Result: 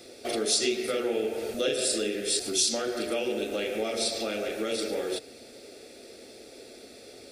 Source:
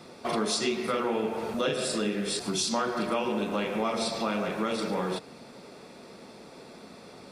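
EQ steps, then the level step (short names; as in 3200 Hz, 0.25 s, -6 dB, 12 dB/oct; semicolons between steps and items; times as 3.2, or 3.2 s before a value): high shelf 6200 Hz +7.5 dB; fixed phaser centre 420 Hz, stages 4; +2.0 dB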